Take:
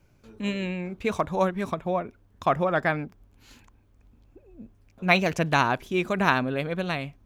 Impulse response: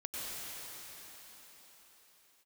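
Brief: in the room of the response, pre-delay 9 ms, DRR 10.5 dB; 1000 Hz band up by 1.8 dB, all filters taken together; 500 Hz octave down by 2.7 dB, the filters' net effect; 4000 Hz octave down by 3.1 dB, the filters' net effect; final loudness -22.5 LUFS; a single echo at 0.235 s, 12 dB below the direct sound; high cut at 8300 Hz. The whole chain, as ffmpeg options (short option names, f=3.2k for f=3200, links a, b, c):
-filter_complex "[0:a]lowpass=8.3k,equalizer=f=500:t=o:g=-5,equalizer=f=1k:t=o:g=4,equalizer=f=4k:t=o:g=-4,aecho=1:1:235:0.251,asplit=2[a][b];[1:a]atrim=start_sample=2205,adelay=9[c];[b][c]afir=irnorm=-1:irlink=0,volume=-13dB[d];[a][d]amix=inputs=2:normalize=0,volume=3.5dB"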